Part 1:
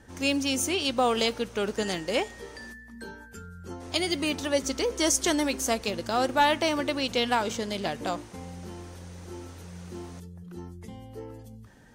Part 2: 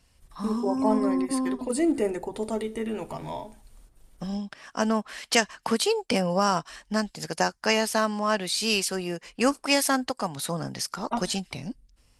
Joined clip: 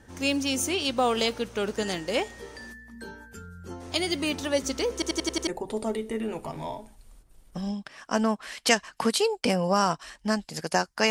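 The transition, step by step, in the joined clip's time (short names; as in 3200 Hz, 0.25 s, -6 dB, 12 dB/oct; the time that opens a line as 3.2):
part 1
4.93 stutter in place 0.09 s, 6 plays
5.47 switch to part 2 from 2.13 s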